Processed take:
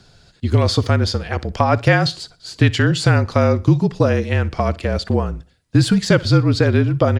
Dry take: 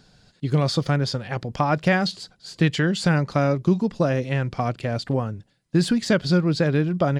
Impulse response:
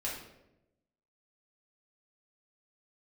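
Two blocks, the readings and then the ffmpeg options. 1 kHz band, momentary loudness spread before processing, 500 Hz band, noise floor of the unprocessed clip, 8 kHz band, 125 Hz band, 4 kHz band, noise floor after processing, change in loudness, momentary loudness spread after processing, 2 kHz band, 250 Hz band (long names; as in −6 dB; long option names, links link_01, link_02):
+4.5 dB, 8 LU, +5.0 dB, −62 dBFS, +5.5 dB, +7.0 dB, +5.5 dB, −55 dBFS, +5.5 dB, 8 LU, +5.0 dB, +3.5 dB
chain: -af "afreqshift=-40,aecho=1:1:61|122|183:0.0891|0.0312|0.0109,volume=5.5dB"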